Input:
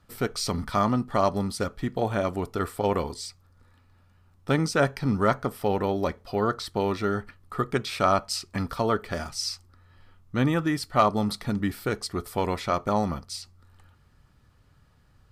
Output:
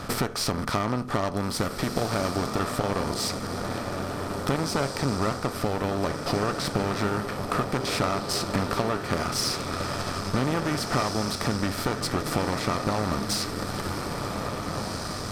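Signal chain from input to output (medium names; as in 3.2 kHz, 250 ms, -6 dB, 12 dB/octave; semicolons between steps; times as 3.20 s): spectral levelling over time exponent 0.6; compression 6:1, threshold -32 dBFS, peak gain reduction 17.5 dB; echo that smears into a reverb 1801 ms, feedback 42%, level -5 dB; Chebyshev shaper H 8 -21 dB, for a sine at -16.5 dBFS; trim +7 dB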